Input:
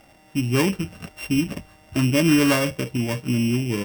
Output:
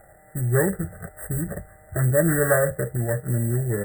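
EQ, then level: brick-wall FIR band-stop 2000–7400 Hz; fixed phaser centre 1000 Hz, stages 6; +5.0 dB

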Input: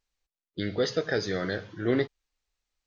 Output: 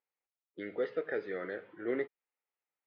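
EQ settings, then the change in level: dynamic EQ 850 Hz, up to -7 dB, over -45 dBFS, Q 1.6; speaker cabinet 500–2000 Hz, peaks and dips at 650 Hz -5 dB, 1100 Hz -6 dB, 1600 Hz -8 dB; 0.0 dB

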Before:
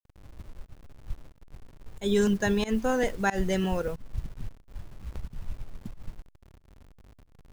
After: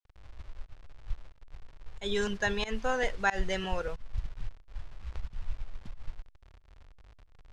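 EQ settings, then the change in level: LPF 4900 Hz 12 dB/oct; bell 220 Hz -14 dB 2.3 oct; +2.0 dB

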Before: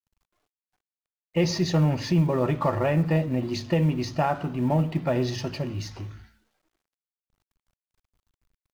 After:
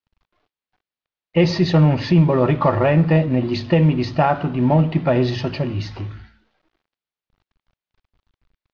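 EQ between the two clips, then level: LPF 4400 Hz 24 dB/oct; +7.5 dB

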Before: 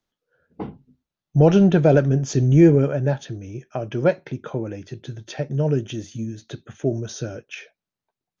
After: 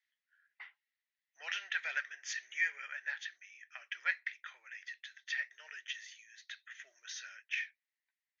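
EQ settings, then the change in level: ladder high-pass 1800 Hz, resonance 80%; air absorption 140 m; tilt +3 dB/oct; +3.0 dB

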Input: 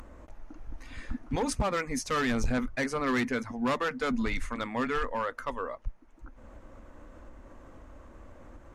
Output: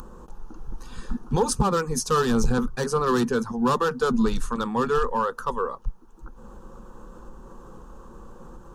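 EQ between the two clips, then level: bell 190 Hz +4.5 dB 2.8 oct; high shelf 9700 Hz +4.5 dB; fixed phaser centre 420 Hz, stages 8; +8.0 dB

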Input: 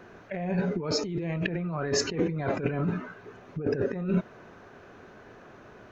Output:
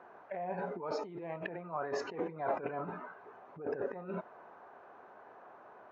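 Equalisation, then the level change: band-pass 860 Hz, Q 2.3; +2.5 dB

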